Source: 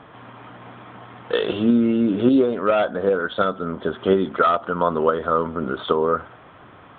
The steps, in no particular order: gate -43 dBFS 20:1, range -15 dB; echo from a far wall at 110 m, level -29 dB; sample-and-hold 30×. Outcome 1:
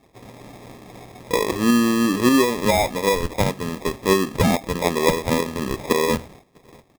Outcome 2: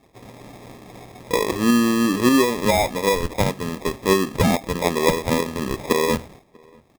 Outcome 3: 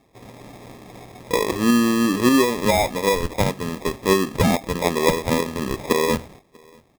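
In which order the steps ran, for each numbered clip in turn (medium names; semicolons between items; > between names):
echo from a far wall > sample-and-hold > gate; sample-and-hold > gate > echo from a far wall; gate > echo from a far wall > sample-and-hold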